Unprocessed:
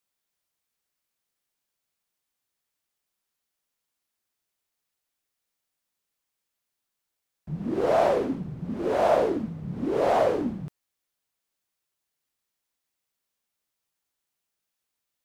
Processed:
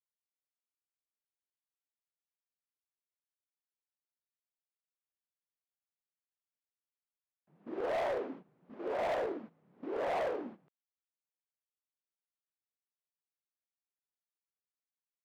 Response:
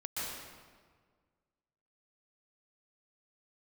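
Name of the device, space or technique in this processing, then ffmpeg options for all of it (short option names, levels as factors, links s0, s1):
walkie-talkie: -af "highpass=410,lowpass=2600,asoftclip=type=hard:threshold=0.0708,agate=range=0.224:threshold=0.01:ratio=16:detection=peak,volume=0.422"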